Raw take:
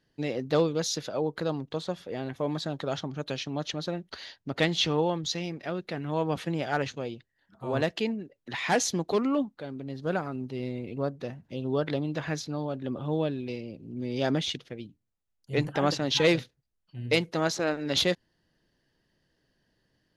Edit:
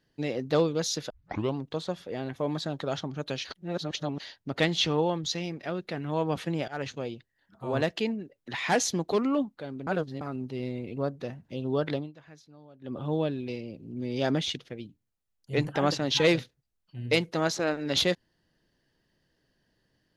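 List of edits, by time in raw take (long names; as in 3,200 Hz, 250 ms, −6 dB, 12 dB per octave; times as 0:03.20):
0:01.10: tape start 0.46 s
0:03.45–0:04.20: reverse
0:06.68–0:07.01: fade in equal-power, from −22 dB
0:09.87–0:10.21: reverse
0:11.93–0:12.98: duck −20 dB, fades 0.19 s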